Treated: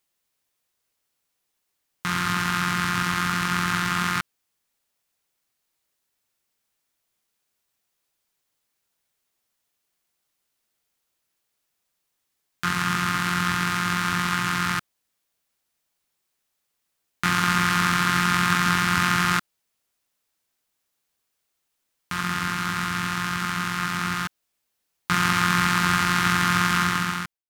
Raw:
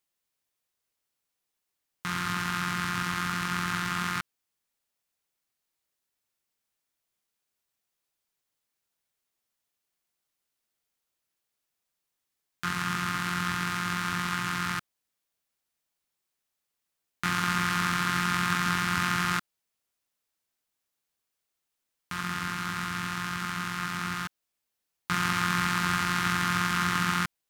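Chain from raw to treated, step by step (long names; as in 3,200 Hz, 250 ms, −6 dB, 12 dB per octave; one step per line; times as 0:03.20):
fade-out on the ending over 0.74 s
level +6 dB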